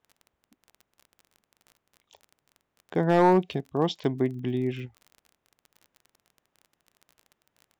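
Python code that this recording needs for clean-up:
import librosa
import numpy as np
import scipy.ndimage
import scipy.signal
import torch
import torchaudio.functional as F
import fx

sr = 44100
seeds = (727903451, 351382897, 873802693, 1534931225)

y = fx.fix_declip(x, sr, threshold_db=-12.0)
y = fx.fix_declick_ar(y, sr, threshold=6.5)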